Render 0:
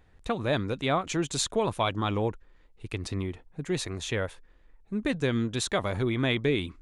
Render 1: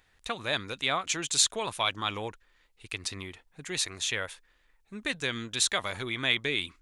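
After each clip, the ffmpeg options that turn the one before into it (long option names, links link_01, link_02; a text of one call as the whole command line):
ffmpeg -i in.wav -af "tiltshelf=frequency=970:gain=-9.5,volume=-2.5dB" out.wav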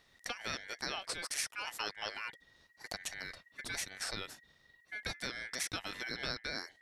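ffmpeg -i in.wav -af "acompressor=threshold=-40dB:ratio=2.5,aeval=exprs='val(0)*sin(2*PI*1900*n/s)':channel_layout=same,volume=2.5dB" out.wav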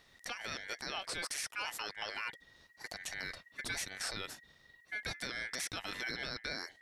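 ffmpeg -i in.wav -af "alimiter=level_in=6.5dB:limit=-24dB:level=0:latency=1:release=13,volume=-6.5dB,volume=3dB" out.wav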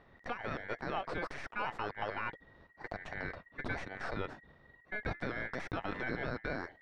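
ffmpeg -i in.wav -af "aeval=exprs='0.0447*(cos(1*acos(clip(val(0)/0.0447,-1,1)))-cos(1*PI/2))+0.00501*(cos(4*acos(clip(val(0)/0.0447,-1,1)))-cos(4*PI/2))':channel_layout=same,lowpass=1200,volume=8dB" out.wav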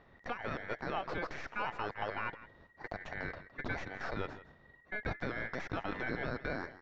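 ffmpeg -i in.wav -af "aecho=1:1:163:0.158,aresample=16000,aresample=44100" out.wav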